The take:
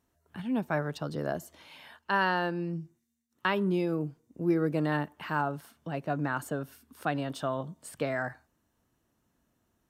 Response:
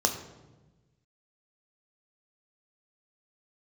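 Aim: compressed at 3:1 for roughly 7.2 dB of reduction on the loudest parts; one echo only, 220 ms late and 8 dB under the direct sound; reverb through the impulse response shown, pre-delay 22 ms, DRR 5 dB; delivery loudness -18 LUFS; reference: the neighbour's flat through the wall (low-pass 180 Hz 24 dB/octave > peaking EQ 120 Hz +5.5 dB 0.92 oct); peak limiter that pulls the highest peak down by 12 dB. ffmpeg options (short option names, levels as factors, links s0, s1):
-filter_complex "[0:a]acompressor=threshold=0.0282:ratio=3,alimiter=level_in=1.5:limit=0.0631:level=0:latency=1,volume=0.668,aecho=1:1:220:0.398,asplit=2[s0][s1];[1:a]atrim=start_sample=2205,adelay=22[s2];[s1][s2]afir=irnorm=-1:irlink=0,volume=0.168[s3];[s0][s3]amix=inputs=2:normalize=0,lowpass=f=180:w=0.5412,lowpass=f=180:w=1.3066,equalizer=f=120:t=o:w=0.92:g=5.5,volume=15"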